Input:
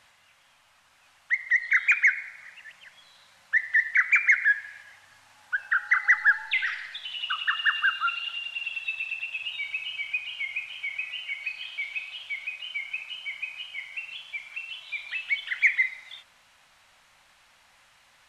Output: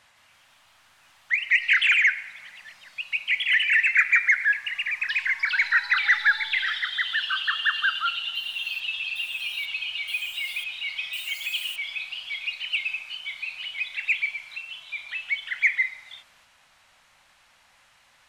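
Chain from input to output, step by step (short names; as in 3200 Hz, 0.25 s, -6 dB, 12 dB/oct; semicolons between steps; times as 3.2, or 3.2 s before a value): 11.13–11.76 switching spikes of -33.5 dBFS; echoes that change speed 0.161 s, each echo +2 st, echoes 3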